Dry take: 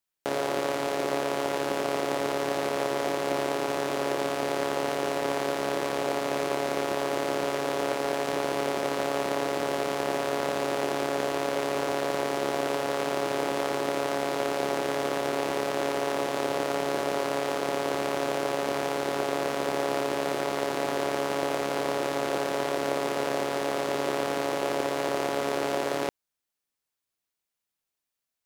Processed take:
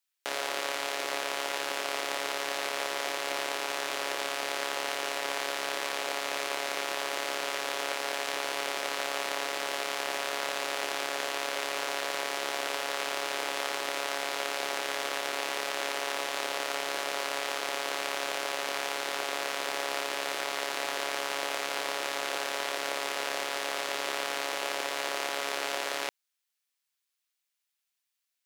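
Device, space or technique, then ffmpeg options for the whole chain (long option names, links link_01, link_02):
filter by subtraction: -filter_complex "[0:a]asplit=2[link_01][link_02];[link_02]lowpass=2600,volume=-1[link_03];[link_01][link_03]amix=inputs=2:normalize=0,volume=2dB"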